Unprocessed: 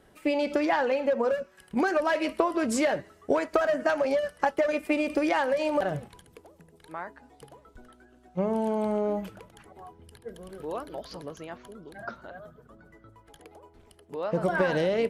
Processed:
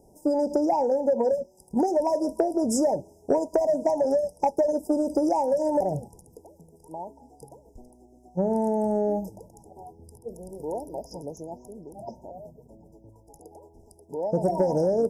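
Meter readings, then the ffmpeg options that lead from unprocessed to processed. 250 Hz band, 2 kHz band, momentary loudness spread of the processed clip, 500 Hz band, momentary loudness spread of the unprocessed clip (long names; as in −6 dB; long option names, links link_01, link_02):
+2.5 dB, below −20 dB, 18 LU, +2.5 dB, 17 LU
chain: -af "afftfilt=real='re*(1-between(b*sr/4096,970,4900))':imag='im*(1-between(b*sr/4096,970,4900))':win_size=4096:overlap=0.75,highshelf=frequency=8500:gain=2.5,asoftclip=type=tanh:threshold=-12dB,volume=3dB"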